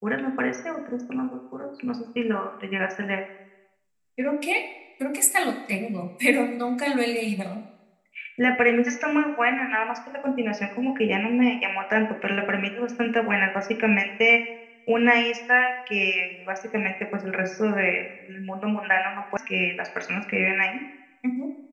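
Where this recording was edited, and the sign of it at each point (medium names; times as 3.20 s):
19.37 s: sound stops dead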